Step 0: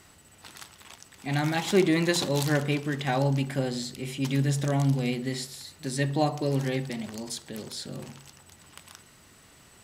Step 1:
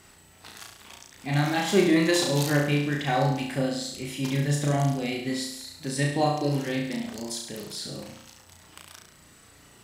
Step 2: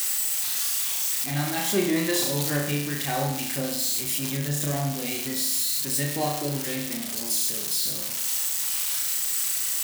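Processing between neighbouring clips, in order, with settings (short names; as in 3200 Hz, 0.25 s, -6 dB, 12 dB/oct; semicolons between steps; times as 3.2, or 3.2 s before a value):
reverb removal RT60 0.64 s; flutter echo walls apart 5.9 m, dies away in 0.74 s
switching spikes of -16 dBFS; on a send at -24 dB: reverb RT60 5.6 s, pre-delay 3 ms; on the sum: gain -3.5 dB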